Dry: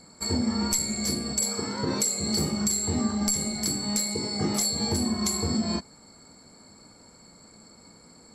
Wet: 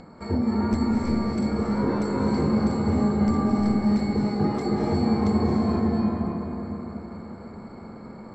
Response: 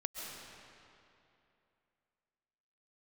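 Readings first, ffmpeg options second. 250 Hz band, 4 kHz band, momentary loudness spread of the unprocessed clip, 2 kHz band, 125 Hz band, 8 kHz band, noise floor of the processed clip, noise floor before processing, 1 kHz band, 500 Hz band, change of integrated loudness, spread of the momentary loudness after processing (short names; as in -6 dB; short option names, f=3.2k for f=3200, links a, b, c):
+7.0 dB, -13.0 dB, 3 LU, +0.5 dB, +6.5 dB, under -20 dB, -42 dBFS, -53 dBFS, +7.0 dB, +7.0 dB, +2.0 dB, 17 LU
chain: -filter_complex "[0:a]lowpass=1.5k,asplit=2[a][b];[b]acompressor=mode=upward:threshold=-33dB:ratio=2.5,volume=-3dB[c];[a][c]amix=inputs=2:normalize=0[d];[1:a]atrim=start_sample=2205,asetrate=27342,aresample=44100[e];[d][e]afir=irnorm=-1:irlink=0,volume=-2dB"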